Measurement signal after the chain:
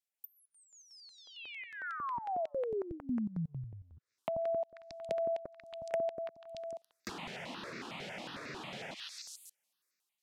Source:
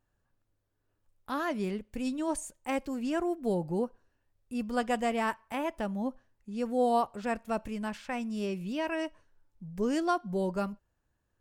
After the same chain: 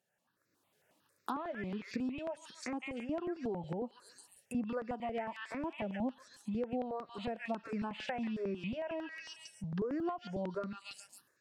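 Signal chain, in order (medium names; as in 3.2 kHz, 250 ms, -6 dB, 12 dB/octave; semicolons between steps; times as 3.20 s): level rider gain up to 12 dB; bass shelf 380 Hz -6.5 dB; on a send: repeats whose band climbs or falls 139 ms, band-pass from 2.5 kHz, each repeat 0.7 oct, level -0.5 dB; on the sum: compression 6:1, threshold -35 dBFS; low-pass that closes with the level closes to 1.3 kHz, closed at -32 dBFS; dynamic bell 1.3 kHz, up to -4 dB, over -48 dBFS, Q 0.73; high-pass 150 Hz 24 dB/octave; stepped phaser 11 Hz 290–3100 Hz; trim +3.5 dB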